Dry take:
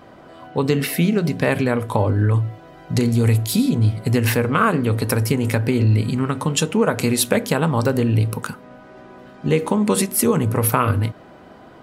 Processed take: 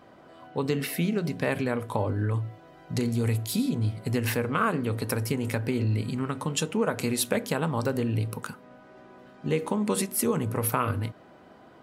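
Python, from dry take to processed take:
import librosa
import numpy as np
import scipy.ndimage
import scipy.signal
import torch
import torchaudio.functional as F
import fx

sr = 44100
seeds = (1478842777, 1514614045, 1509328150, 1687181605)

y = fx.low_shelf(x, sr, hz=75.0, db=-7.0)
y = y * librosa.db_to_amplitude(-8.0)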